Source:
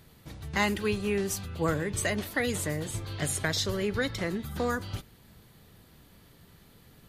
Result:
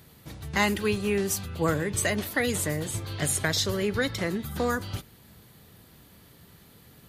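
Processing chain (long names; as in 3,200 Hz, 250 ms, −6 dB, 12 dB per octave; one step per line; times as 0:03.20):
high-pass filter 55 Hz
high-shelf EQ 10,000 Hz +5.5 dB
level +2.5 dB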